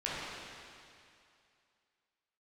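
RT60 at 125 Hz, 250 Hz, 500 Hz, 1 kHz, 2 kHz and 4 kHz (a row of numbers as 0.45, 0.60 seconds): 2.3, 2.3, 2.4, 2.5, 2.5, 2.4 seconds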